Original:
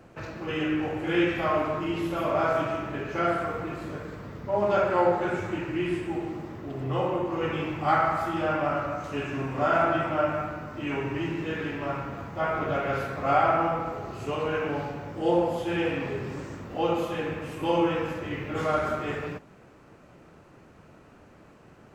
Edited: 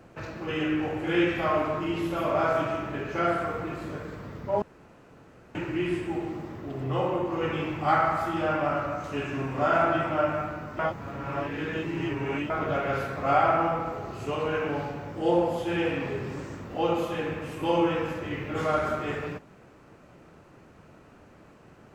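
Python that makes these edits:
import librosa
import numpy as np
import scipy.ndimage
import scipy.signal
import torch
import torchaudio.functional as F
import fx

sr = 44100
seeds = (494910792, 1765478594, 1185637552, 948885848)

y = fx.edit(x, sr, fx.room_tone_fill(start_s=4.62, length_s=0.93),
    fx.reverse_span(start_s=10.79, length_s=1.71), tone=tone)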